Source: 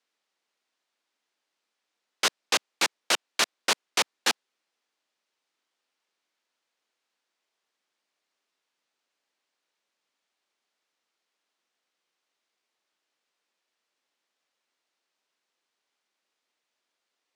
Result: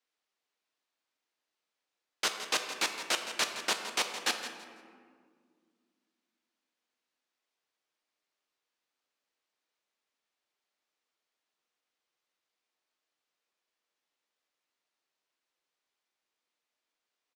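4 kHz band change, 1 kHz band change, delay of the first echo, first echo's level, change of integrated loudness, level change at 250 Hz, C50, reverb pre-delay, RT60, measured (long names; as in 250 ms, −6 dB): −5.5 dB, −5.0 dB, 166 ms, −12.0 dB, −5.5 dB, −4.5 dB, 6.0 dB, 6 ms, 2.0 s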